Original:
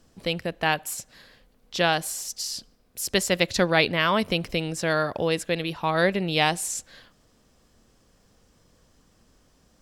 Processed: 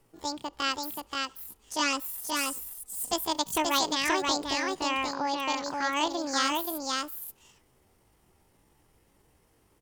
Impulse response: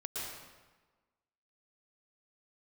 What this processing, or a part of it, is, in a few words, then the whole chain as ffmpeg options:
chipmunk voice: -filter_complex "[0:a]asetrate=76340,aresample=44100,atempo=0.577676,asettb=1/sr,asplit=3[link_01][link_02][link_03];[link_01]atrim=end=1.794[link_04];[link_02]atrim=start=1.79:end=3.13,asetpts=PTS-STARTPTS,afade=type=in:duration=0.004:curve=qsin,afade=type=out:start_time=1.336:duration=0.004:curve=qsin,aecho=1:1:4:0.73,atrim=end_sample=59094[link_05];[link_03]atrim=start=3.126[link_06];[link_04][link_05]acrossfade=duration=0.004:curve1=hsin:curve2=qsin[link_07];[link_07][link_06]acrossfade=duration=0.004:curve1=qsin:curve2=hsin,asettb=1/sr,asplit=3[link_08][link_09][link_10];[link_08]atrim=end=4.624[link_11];[link_09]atrim=start=4.62:end=5.4,asetpts=PTS-STARTPTS,afade=type=in:duration=0.004:curve=qsin,afade=type=out:start_time=0.776:duration=0.004:curve=qsin,lowpass=frequency=5700:width=0.5412,lowpass=frequency=5700:width=1.3066[link_12];[link_10]atrim=start=5.396[link_13];[link_11][link_12]acrossfade=duration=0.004:curve1=hsin:curve2=qsin[link_14];[link_14][link_13]acrossfade=duration=0.004:curve1=qsin:curve2=hsin,aecho=1:1:530:0.708,volume=-6dB"

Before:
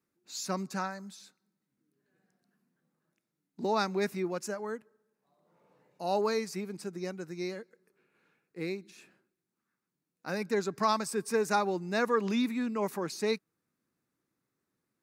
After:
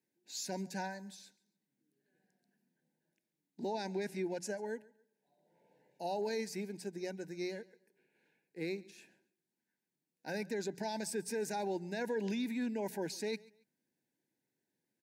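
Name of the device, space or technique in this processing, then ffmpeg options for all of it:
PA system with an anti-feedback notch: -filter_complex "[0:a]asettb=1/sr,asplit=3[link_01][link_02][link_03];[link_01]atrim=end=3.724[link_04];[link_02]atrim=start=3.72:end=4.65,asetpts=PTS-STARTPTS,afade=type=in:duration=0.004:curve=qsin,afade=type=out:start_time=0.926:duration=0.004:curve=qsin,lowpass=frequency=12000:width=0.5412,lowpass=frequency=12000:width=1.3066[link_05];[link_03]atrim=start=4.646[link_06];[link_04][link_05]acrossfade=duration=0.004:curve1=hsin:curve2=qsin[link_07];[link_07][link_06]acrossfade=duration=0.004:curve1=qsin:curve2=hsin,highpass=130,asuperstop=centerf=1200:order=12:qfactor=2.4,alimiter=level_in=2dB:limit=-24dB:level=0:latency=1:release=11,volume=-2dB,bandreject=frequency=60:width_type=h:width=6,bandreject=frequency=120:width_type=h:width=6,bandreject=frequency=180:width_type=h:width=6,aecho=1:1:139|278:0.0708|0.0198,volume=-3dB"

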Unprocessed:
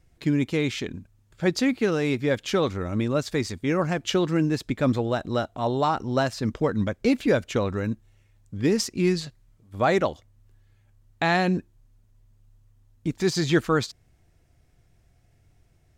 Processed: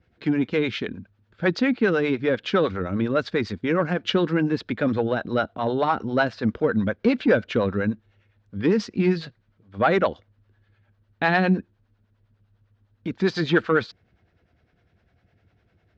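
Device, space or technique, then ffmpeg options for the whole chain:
guitar amplifier with harmonic tremolo: -filter_complex "[0:a]acrossover=split=430[link_01][link_02];[link_01]aeval=exprs='val(0)*(1-0.7/2+0.7/2*cos(2*PI*9.9*n/s))':channel_layout=same[link_03];[link_02]aeval=exprs='val(0)*(1-0.7/2-0.7/2*cos(2*PI*9.9*n/s))':channel_layout=same[link_04];[link_03][link_04]amix=inputs=2:normalize=0,asoftclip=type=tanh:threshold=-15dB,highpass=80,equalizer=frequency=140:width_type=q:width=4:gain=-6,equalizer=frequency=200:width_type=q:width=4:gain=5,equalizer=frequency=480:width_type=q:width=4:gain=4,equalizer=frequency=1500:width_type=q:width=4:gain=7,lowpass=frequency=4200:width=0.5412,lowpass=frequency=4200:width=1.3066,volume=4.5dB"

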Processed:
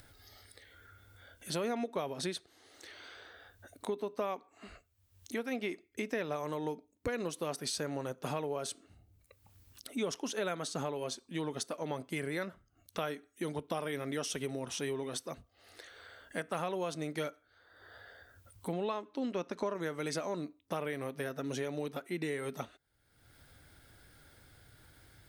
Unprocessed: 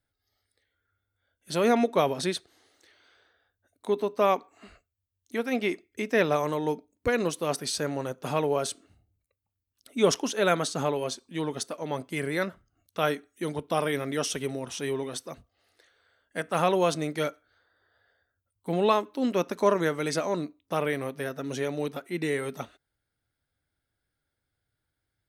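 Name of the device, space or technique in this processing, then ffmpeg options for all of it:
upward and downward compression: -filter_complex "[0:a]asettb=1/sr,asplit=3[link_01][link_02][link_03];[link_01]atrim=end=18.734[link_04];[link_02]atrim=start=18.73:end=19.75,asetpts=PTS-STARTPTS,afade=type=in:duration=0.004:curve=qsin,afade=type=out:start_time=1.016:duration=0.004:curve=qsin,lowpass=6800[link_05];[link_03]atrim=start=19.746[link_06];[link_04][link_05]acrossfade=duration=0.004:curve1=hsin:curve2=qsin[link_07];[link_07][link_06]acrossfade=duration=0.004:curve1=qsin:curve2=hsin,acompressor=mode=upward:threshold=-37dB:ratio=2.5,acompressor=threshold=-31dB:ratio=5,volume=-2dB"

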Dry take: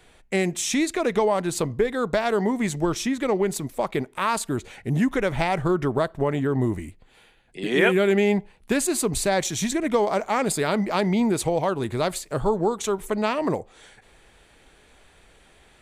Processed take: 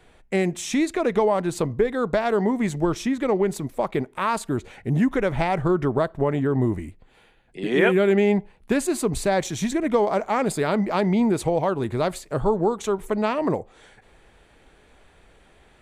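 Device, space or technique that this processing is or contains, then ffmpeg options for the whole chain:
behind a face mask: -af "highshelf=frequency=2500:gain=-8,volume=1.5dB"

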